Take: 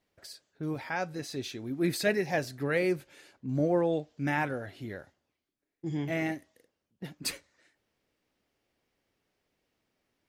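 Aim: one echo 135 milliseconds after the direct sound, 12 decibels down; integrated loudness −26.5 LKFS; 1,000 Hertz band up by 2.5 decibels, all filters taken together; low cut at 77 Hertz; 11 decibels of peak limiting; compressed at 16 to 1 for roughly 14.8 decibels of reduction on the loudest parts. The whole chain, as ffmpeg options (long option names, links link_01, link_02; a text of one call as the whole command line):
ffmpeg -i in.wav -af "highpass=77,equalizer=frequency=1000:width_type=o:gain=3.5,acompressor=threshold=-36dB:ratio=16,alimiter=level_in=9.5dB:limit=-24dB:level=0:latency=1,volume=-9.5dB,aecho=1:1:135:0.251,volume=17.5dB" out.wav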